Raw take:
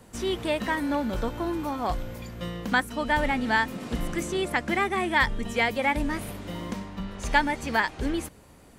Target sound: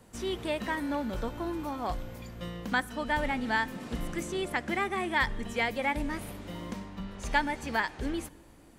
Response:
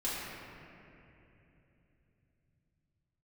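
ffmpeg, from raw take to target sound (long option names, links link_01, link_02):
-filter_complex "[0:a]asplit=2[link_01][link_02];[1:a]atrim=start_sample=2205,asetrate=66150,aresample=44100,adelay=48[link_03];[link_02][link_03]afir=irnorm=-1:irlink=0,volume=-24.5dB[link_04];[link_01][link_04]amix=inputs=2:normalize=0,volume=-5dB"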